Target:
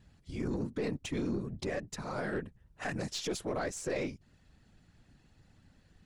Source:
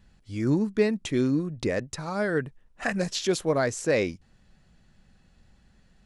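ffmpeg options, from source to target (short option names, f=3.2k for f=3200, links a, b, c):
-filter_complex "[0:a]asplit=2[a][b];[b]acompressor=threshold=-38dB:ratio=6,volume=0.5dB[c];[a][c]amix=inputs=2:normalize=0,afftfilt=real='hypot(re,im)*cos(2*PI*random(0))':imag='hypot(re,im)*sin(2*PI*random(1))':win_size=512:overlap=0.75,alimiter=limit=-23dB:level=0:latency=1:release=17,aeval=exprs='0.0708*(cos(1*acos(clip(val(0)/0.0708,-1,1)))-cos(1*PI/2))+0.00447*(cos(4*acos(clip(val(0)/0.0708,-1,1)))-cos(4*PI/2))':c=same,volume=-3dB"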